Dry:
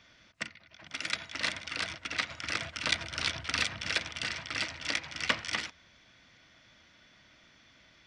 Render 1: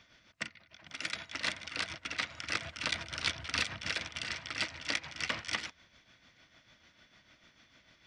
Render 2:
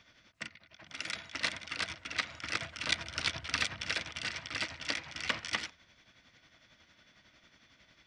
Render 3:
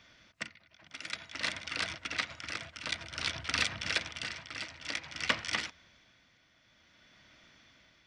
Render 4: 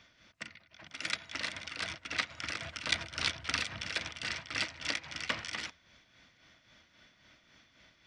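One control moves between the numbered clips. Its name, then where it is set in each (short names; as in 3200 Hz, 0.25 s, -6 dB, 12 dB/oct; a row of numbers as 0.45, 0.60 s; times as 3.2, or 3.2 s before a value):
tremolo, rate: 6.7, 11, 0.54, 3.7 Hz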